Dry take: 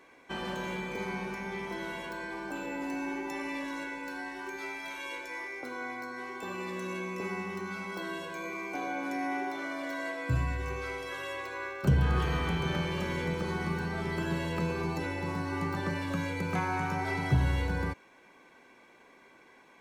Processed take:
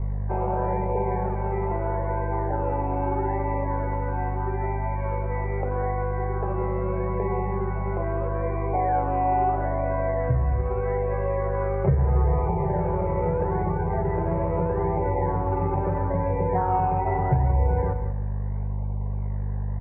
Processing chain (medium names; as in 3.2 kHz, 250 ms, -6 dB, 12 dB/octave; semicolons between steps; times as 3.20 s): high-order bell 600 Hz +15 dB; loudest bins only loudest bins 32; hum 50 Hz, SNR 12 dB; resonant low shelf 180 Hz +10.5 dB, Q 1.5; compression 3:1, threshold -22 dBFS, peak gain reduction 10.5 dB; reverberation RT60 1.4 s, pre-delay 4 ms, DRR 14 dB; in parallel at -11 dB: decimation with a swept rate 20×, swing 60% 0.78 Hz; on the sum: elliptic low-pass 2.1 kHz, stop band 50 dB; on a send: delay 191 ms -11.5 dB